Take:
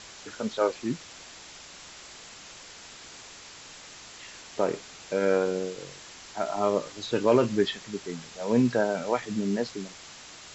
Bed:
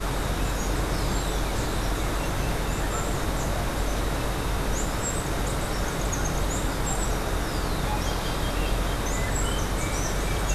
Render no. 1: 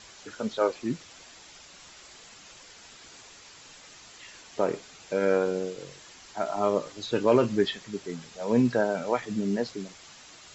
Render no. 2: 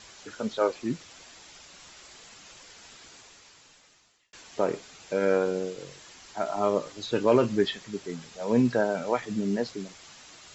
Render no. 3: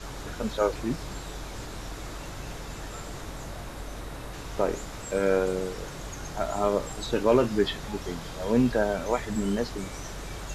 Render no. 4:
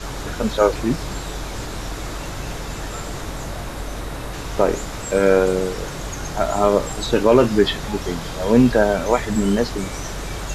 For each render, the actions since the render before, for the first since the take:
denoiser 6 dB, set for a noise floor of -47 dBFS
2.96–4.33 fade out
add bed -11.5 dB
gain +9 dB; limiter -3 dBFS, peak gain reduction 2.5 dB

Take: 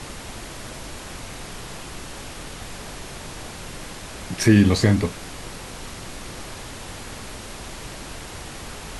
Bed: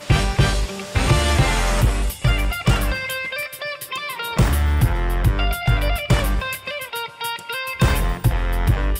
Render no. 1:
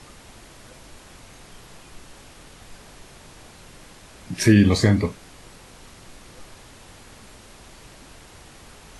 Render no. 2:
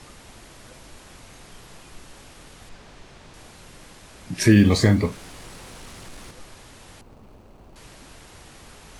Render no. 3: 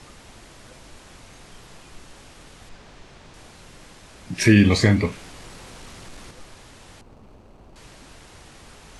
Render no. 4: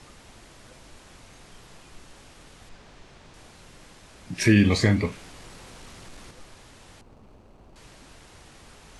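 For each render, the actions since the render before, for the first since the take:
noise print and reduce 10 dB
2.69–3.34 air absorption 68 m; 4.51–6.31 G.711 law mismatch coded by mu; 7.01–7.76 median filter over 25 samples
LPF 10000 Hz 12 dB/oct; dynamic EQ 2400 Hz, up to +7 dB, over -47 dBFS, Q 1.9
gain -3.5 dB

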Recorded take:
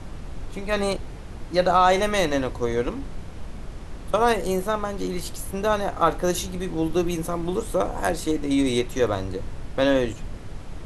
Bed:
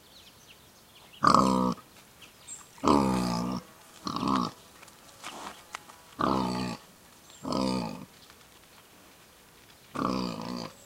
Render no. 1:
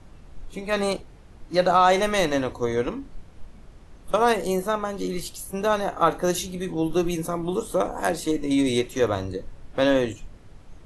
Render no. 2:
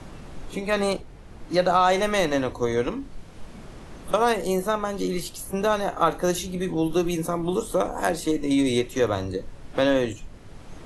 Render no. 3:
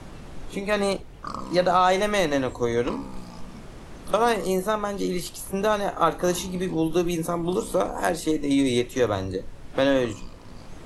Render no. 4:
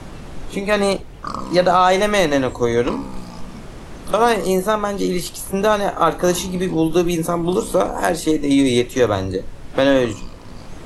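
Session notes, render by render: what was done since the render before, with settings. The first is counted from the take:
noise print and reduce 11 dB
three-band squash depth 40%
add bed -13.5 dB
gain +6.5 dB; limiter -3 dBFS, peak gain reduction 3 dB

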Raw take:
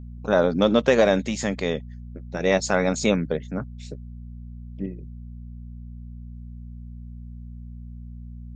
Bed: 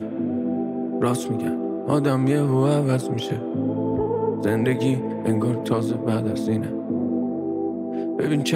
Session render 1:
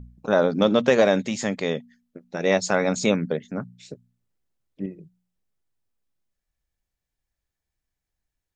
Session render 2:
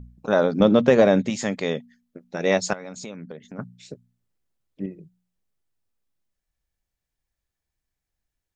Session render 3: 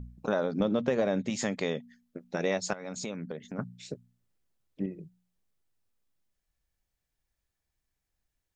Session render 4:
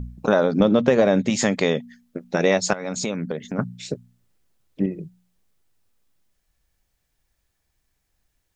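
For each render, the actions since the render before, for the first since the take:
de-hum 60 Hz, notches 4
0.6–1.3 tilt -2 dB/oct; 2.73–3.59 compressor 4:1, threshold -36 dBFS
compressor 3:1, threshold -28 dBFS, peak gain reduction 12.5 dB
gain +10.5 dB

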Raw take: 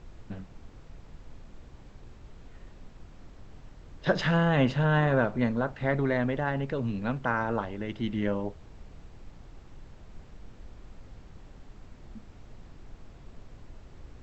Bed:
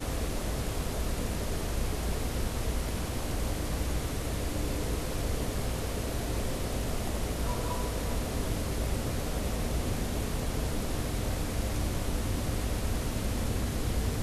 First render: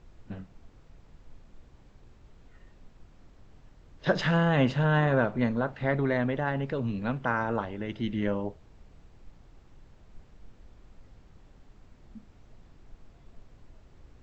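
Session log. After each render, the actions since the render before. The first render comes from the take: noise print and reduce 6 dB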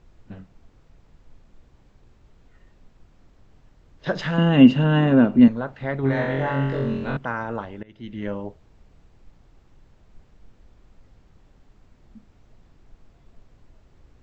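4.38–5.48 small resonant body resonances 250/2800 Hz, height 17 dB, ringing for 35 ms; 6.01–7.17 flutter echo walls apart 3.8 m, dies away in 0.99 s; 7.83–8.31 fade in, from -21 dB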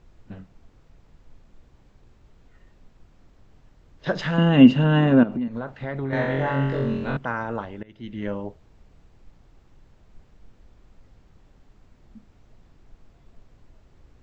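5.23–6.13 compressor 8:1, threshold -24 dBFS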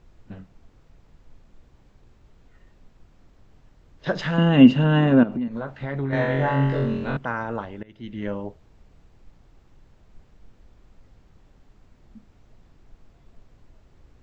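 5.49–6.86 doubler 14 ms -7 dB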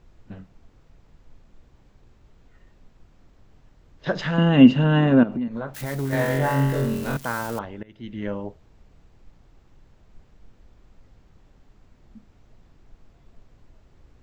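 5.74–7.59 switching spikes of -27 dBFS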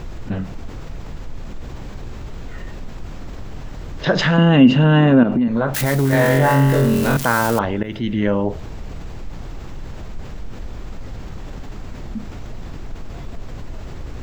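fast leveller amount 50%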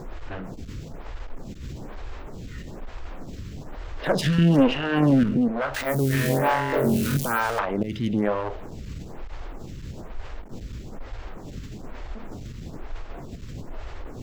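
one-sided clip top -24.5 dBFS; photocell phaser 1.1 Hz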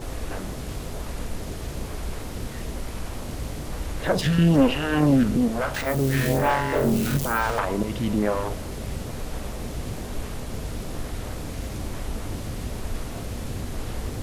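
add bed -2 dB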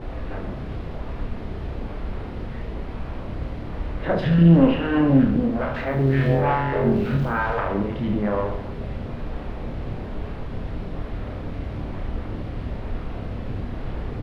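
air absorption 380 m; reverse bouncing-ball echo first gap 30 ms, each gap 1.4×, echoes 5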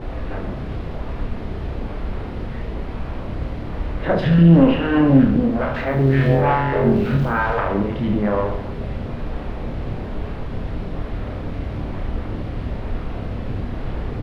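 gain +3.5 dB; limiter -3 dBFS, peak gain reduction 2 dB

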